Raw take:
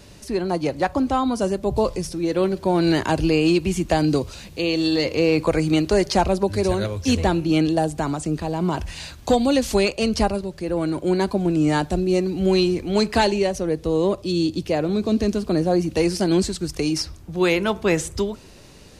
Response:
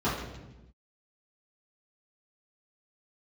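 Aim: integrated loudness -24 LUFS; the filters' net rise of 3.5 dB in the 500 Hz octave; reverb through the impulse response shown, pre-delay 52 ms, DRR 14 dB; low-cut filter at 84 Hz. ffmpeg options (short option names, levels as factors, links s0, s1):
-filter_complex "[0:a]highpass=84,equalizer=f=500:t=o:g=4.5,asplit=2[s0][s1];[1:a]atrim=start_sample=2205,adelay=52[s2];[s1][s2]afir=irnorm=-1:irlink=0,volume=0.0501[s3];[s0][s3]amix=inputs=2:normalize=0,volume=0.562"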